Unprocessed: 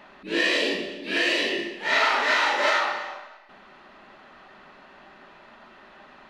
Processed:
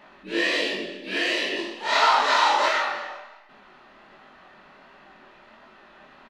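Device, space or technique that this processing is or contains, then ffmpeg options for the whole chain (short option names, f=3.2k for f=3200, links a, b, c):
double-tracked vocal: -filter_complex "[0:a]asettb=1/sr,asplit=3[a][b][c];[a]atrim=end=1.564[d];[b]atrim=start=1.56:end=2.66,asetpts=PTS-STARTPTS,afade=t=in:d=0.004:c=qsin,afade=t=out:st=1.096:d=0.004:c=qsin,equalizer=f=125:t=o:w=1:g=-7,equalizer=f=1k:t=o:w=1:g=10,equalizer=f=2k:t=o:w=1:g=-6,equalizer=f=4k:t=o:w=1:g=5,equalizer=f=8k:t=o:w=1:g=5[e];[c]atrim=start=2.656[f];[d][e]acrossfade=d=0.004:c1=hsin:c2=qsin[g];[g][f]acrossfade=d=0.004:c1=qsin:c2=hsin,asplit=2[h][i];[i]adelay=27,volume=-13dB[j];[h][j]amix=inputs=2:normalize=0,flanger=delay=19:depth=7.7:speed=1.4,volume=1.5dB"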